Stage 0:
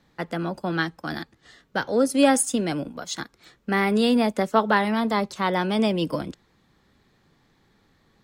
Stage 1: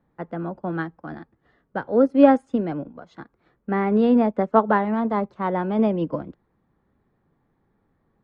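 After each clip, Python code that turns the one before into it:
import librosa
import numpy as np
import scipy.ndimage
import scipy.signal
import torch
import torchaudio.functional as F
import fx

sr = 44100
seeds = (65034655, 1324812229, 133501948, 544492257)

y = scipy.signal.sosfilt(scipy.signal.butter(2, 1200.0, 'lowpass', fs=sr, output='sos'), x)
y = fx.upward_expand(y, sr, threshold_db=-34.0, expansion=1.5)
y = y * librosa.db_to_amplitude(5.5)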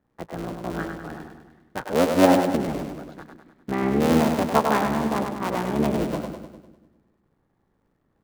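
y = fx.cycle_switch(x, sr, every=3, mode='muted')
y = fx.echo_split(y, sr, split_hz=370.0, low_ms=136, high_ms=100, feedback_pct=52, wet_db=-5)
y = y * librosa.db_to_amplitude(-1.5)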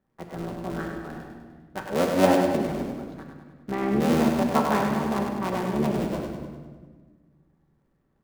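y = fx.room_shoebox(x, sr, seeds[0], volume_m3=1300.0, walls='mixed', distance_m=1.1)
y = y * librosa.db_to_amplitude(-4.0)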